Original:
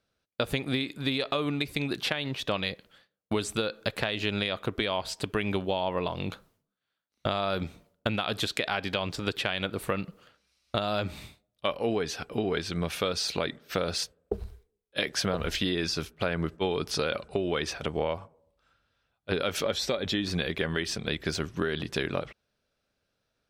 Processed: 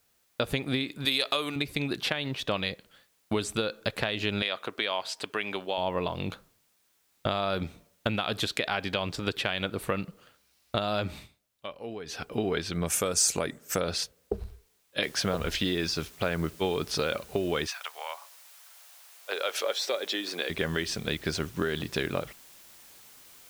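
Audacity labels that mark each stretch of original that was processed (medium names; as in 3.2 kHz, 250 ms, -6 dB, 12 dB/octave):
1.050000	1.560000	RIAA curve recording
4.420000	5.780000	frequency weighting A
11.160000	12.170000	dip -10.5 dB, fades 0.12 s
12.860000	13.810000	resonant high shelf 5.4 kHz +11.5 dB, Q 3
15.030000	15.030000	noise floor step -70 dB -53 dB
17.660000	20.490000	high-pass 990 Hz -> 300 Hz 24 dB/octave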